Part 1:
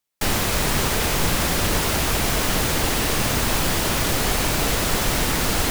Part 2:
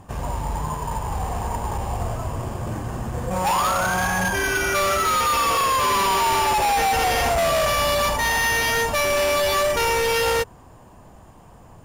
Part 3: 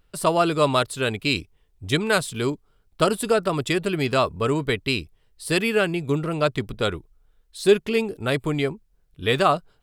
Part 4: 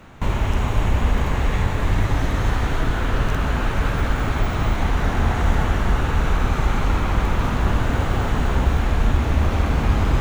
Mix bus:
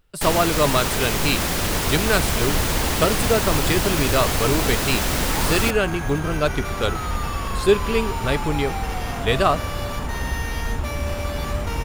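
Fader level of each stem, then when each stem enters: −1.5, −11.5, 0.0, −8.0 decibels; 0.00, 1.90, 0.00, 1.65 seconds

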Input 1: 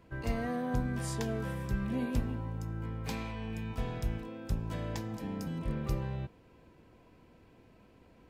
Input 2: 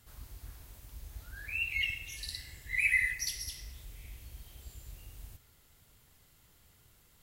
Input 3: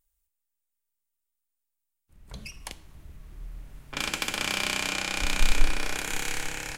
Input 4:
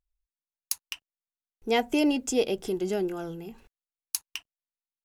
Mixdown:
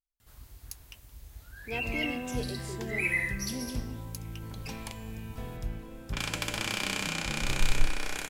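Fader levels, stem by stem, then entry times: −3.5, −1.5, −4.0, −13.5 decibels; 1.60, 0.20, 2.20, 0.00 seconds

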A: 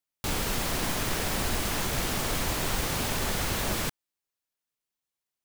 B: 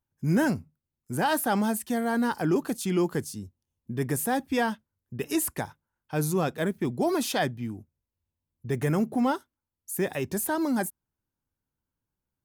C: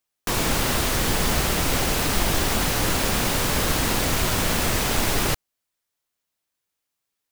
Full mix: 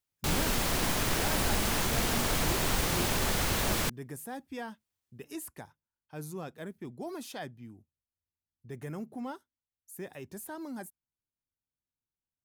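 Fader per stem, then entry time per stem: 0.0 dB, −14.0 dB, muted; 0.00 s, 0.00 s, muted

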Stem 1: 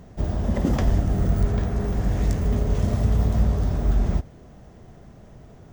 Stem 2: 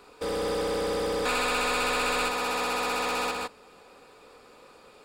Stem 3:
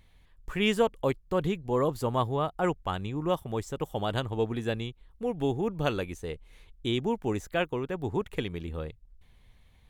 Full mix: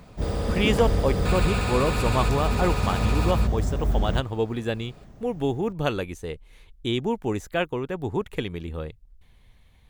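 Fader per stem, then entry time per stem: −3.0, −4.0, +3.0 decibels; 0.00, 0.00, 0.00 seconds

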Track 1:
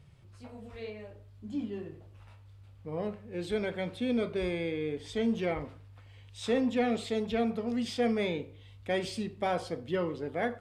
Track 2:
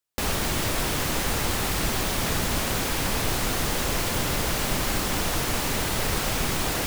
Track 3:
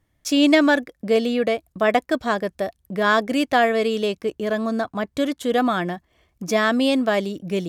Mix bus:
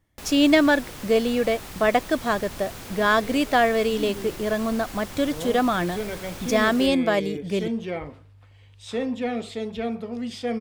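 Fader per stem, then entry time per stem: +1.0, −13.0, −1.5 decibels; 2.45, 0.00, 0.00 seconds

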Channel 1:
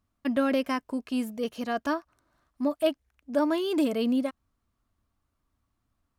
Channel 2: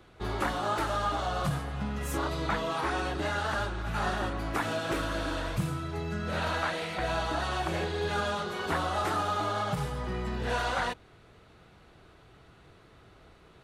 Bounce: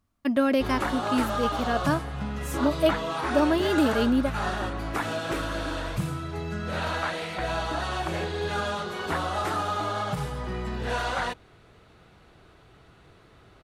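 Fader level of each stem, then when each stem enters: +2.5, +1.5 decibels; 0.00, 0.40 seconds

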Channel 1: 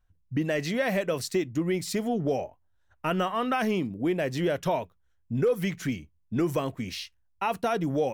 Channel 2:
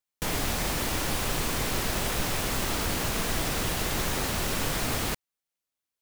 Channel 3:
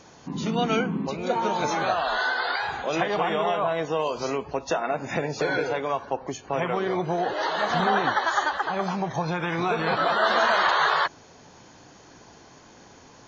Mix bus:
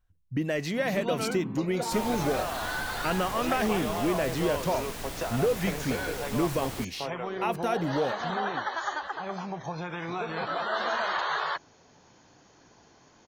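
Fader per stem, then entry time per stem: −1.5, −9.5, −8.0 decibels; 0.00, 1.70, 0.50 seconds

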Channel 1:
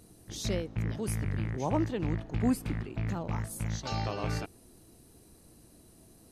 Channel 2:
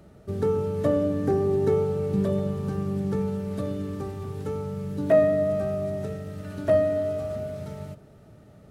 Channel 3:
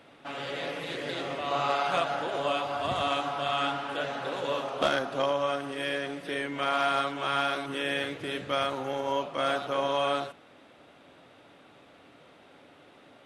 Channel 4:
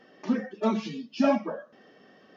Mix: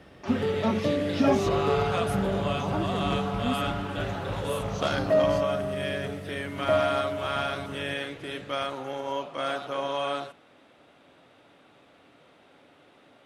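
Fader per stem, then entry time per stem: −3.0, −4.0, −2.0, −0.5 decibels; 1.00, 0.00, 0.00, 0.00 seconds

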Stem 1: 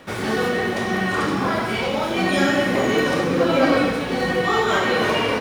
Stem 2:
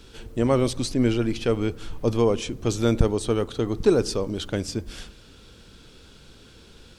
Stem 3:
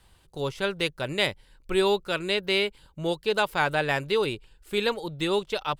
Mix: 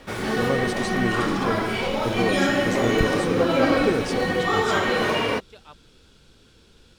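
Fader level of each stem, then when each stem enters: −2.5, −5.0, −18.5 decibels; 0.00, 0.00, 0.00 seconds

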